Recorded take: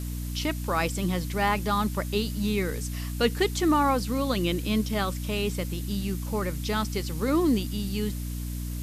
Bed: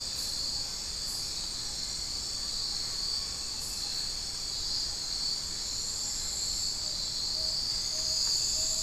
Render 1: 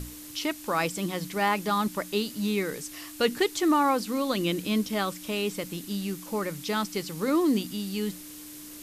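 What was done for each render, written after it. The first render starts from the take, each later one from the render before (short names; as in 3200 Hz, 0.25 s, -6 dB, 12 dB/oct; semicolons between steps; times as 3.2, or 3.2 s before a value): notches 60/120/180/240 Hz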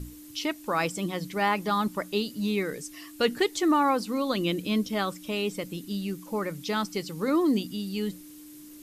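denoiser 9 dB, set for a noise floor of -44 dBFS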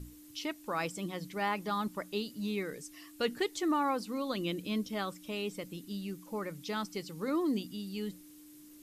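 gain -7.5 dB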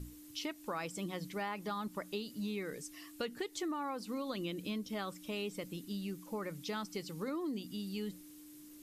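compressor 10:1, threshold -35 dBFS, peak gain reduction 10 dB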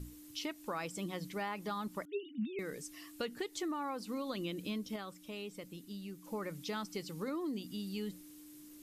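2.05–2.59 sine-wave speech; 4.96–6.24 gain -5 dB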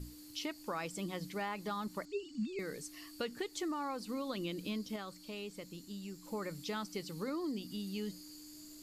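add bed -28 dB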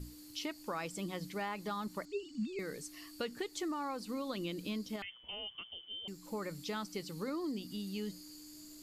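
5.02–6.08 inverted band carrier 3300 Hz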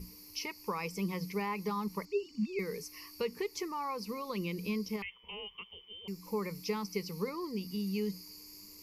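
ripple EQ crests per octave 0.83, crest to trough 15 dB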